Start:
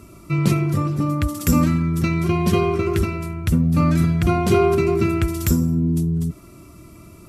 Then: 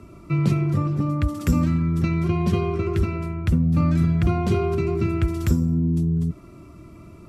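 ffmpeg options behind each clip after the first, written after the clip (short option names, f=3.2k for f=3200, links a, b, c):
-filter_complex "[0:a]aemphasis=mode=reproduction:type=75kf,acrossover=split=170|3000[a][b][c];[b]acompressor=threshold=-26dB:ratio=2.5[d];[a][d][c]amix=inputs=3:normalize=0"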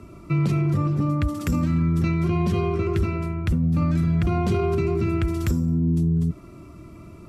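-af "alimiter=limit=-15.5dB:level=0:latency=1:release=18,volume=1dB"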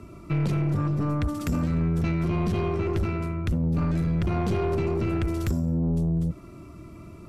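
-af "aeval=exprs='(tanh(10*val(0)+0.3)-tanh(0.3))/10':c=same"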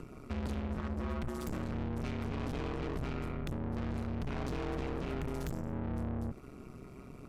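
-af "acompressor=mode=upward:threshold=-41dB:ratio=2.5,aeval=exprs='(tanh(44.7*val(0)+0.6)-tanh(0.6))/44.7':c=same,aeval=exprs='val(0)*sin(2*PI*66*n/s)':c=same"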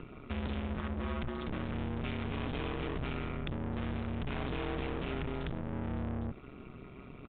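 -af "crystalizer=i=4:c=0,aresample=8000,aresample=44100"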